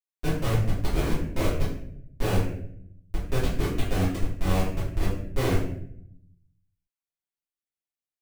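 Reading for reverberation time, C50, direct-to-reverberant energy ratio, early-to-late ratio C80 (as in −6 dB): 0.70 s, 3.0 dB, −11.5 dB, 7.0 dB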